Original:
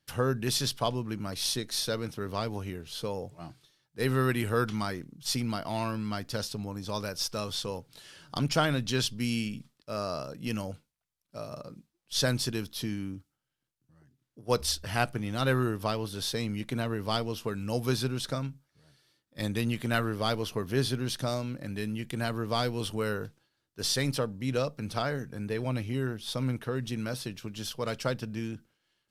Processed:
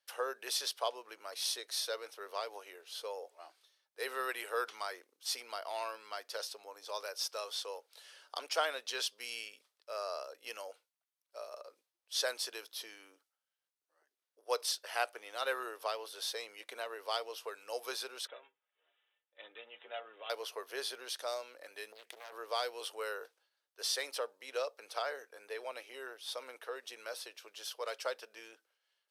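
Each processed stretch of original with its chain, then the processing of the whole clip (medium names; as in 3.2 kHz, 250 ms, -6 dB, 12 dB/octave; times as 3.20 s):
18.27–20.30 s: dynamic bell 1.5 kHz, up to -7 dB, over -43 dBFS, Q 0.87 + inharmonic resonator 71 Hz, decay 0.2 s, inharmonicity 0.008 + careless resampling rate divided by 6×, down none, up filtered
21.92–22.32 s: compression 16:1, threshold -35 dBFS + loudspeaker Doppler distortion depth 0.93 ms
whole clip: steep high-pass 460 Hz 36 dB/octave; band-stop 7.2 kHz, Q 17; trim -5 dB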